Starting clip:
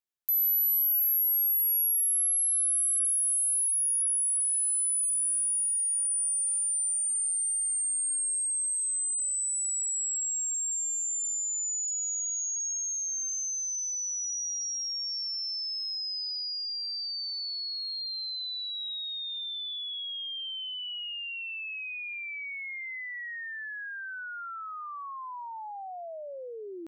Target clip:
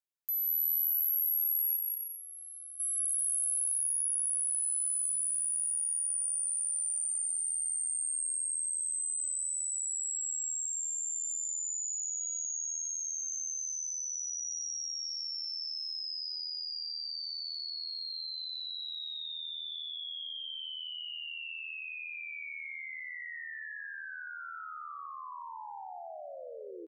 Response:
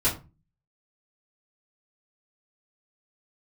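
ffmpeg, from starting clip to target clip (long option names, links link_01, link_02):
-filter_complex "[0:a]asettb=1/sr,asplit=3[link_01][link_02][link_03];[link_01]atrim=end=1.764[link_04];[link_02]atrim=start=1.76:end=2.8,asetpts=PTS-STARTPTS,afade=type=in:duration=0.004:curve=qsin,afade=type=out:start_time=1.036:duration=0.004:curve=qsin,lowpass=5500[link_05];[link_03]atrim=start=2.796[link_06];[link_04][link_05]acrossfade=duration=0.004:curve1=hsin:curve2=qsin[link_07];[link_07][link_06]acrossfade=duration=0.004:curve1=qsin:curve2=hsin,asettb=1/sr,asplit=3[link_08][link_09][link_10];[link_08]atrim=end=4.074[link_11];[link_09]atrim=start=4.07:end=4.69,asetpts=PTS-STARTPTS,afade=type=in:duration=0.004:curve=qsin,afade=type=out:start_time=0.616:duration=0.004:curve=qsin,lowshelf=frequency=320:gain=8[link_12];[link_10]atrim=start=4.686[link_13];[link_11][link_12]acrossfade=duration=0.004:curve1=hsin:curve2=qsin[link_14];[link_14][link_13]acrossfade=duration=0.004:curve1=qsin:curve2=hsin,aecho=1:1:180|297|373|422.5|454.6:0.631|0.398|0.251|0.158|0.1,volume=-6.5dB"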